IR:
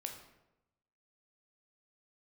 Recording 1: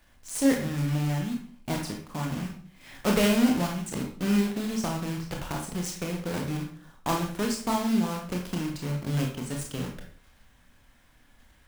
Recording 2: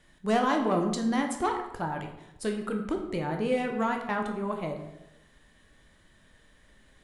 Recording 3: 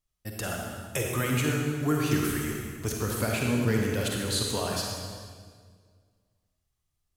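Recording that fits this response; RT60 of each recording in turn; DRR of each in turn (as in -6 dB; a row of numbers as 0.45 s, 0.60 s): 2; 0.50 s, 0.95 s, 1.8 s; 1.0 dB, 3.0 dB, -1.0 dB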